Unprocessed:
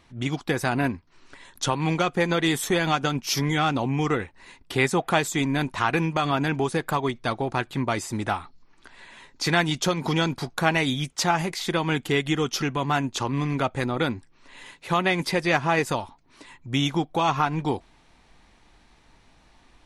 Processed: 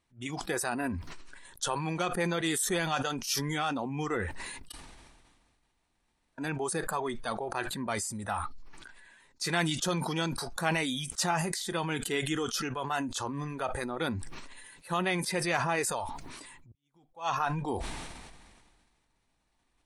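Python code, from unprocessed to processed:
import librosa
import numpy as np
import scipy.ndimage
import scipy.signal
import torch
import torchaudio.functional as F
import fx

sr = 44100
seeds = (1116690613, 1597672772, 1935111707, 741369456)

y = fx.edit(x, sr, fx.room_tone_fill(start_s=4.72, length_s=1.66),
    fx.fade_in_span(start_s=16.72, length_s=0.55, curve='exp'), tone=tone)
y = fx.noise_reduce_blind(y, sr, reduce_db=12)
y = fx.peak_eq(y, sr, hz=9100.0, db=10.5, octaves=0.65)
y = fx.sustainer(y, sr, db_per_s=33.0)
y = y * 10.0 ** (-8.0 / 20.0)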